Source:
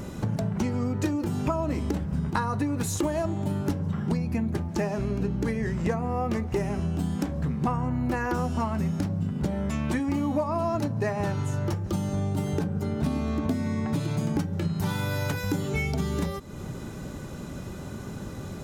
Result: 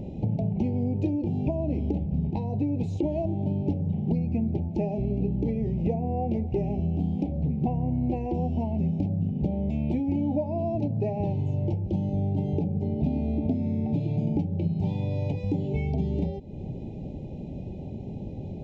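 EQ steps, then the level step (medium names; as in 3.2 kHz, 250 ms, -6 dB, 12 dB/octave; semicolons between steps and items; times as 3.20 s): elliptic band-stop 800–2400 Hz, stop band 60 dB; tape spacing loss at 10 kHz 41 dB; +2.0 dB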